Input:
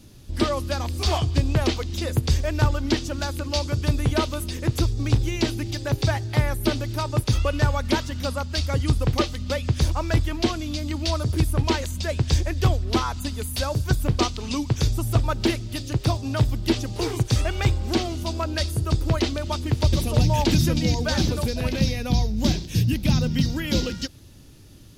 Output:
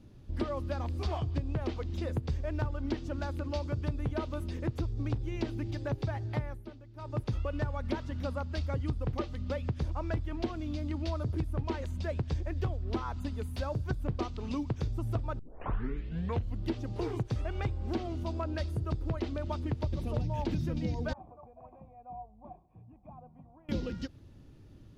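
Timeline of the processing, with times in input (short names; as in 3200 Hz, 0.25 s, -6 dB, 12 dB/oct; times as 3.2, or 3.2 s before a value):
6.34–7.26 dip -18 dB, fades 0.31 s
15.39 tape start 1.26 s
21.13–23.69 vocal tract filter a
whole clip: high shelf 2500 Hz -12 dB; compressor, threshold -23 dBFS; high shelf 5300 Hz -9 dB; gain -5.5 dB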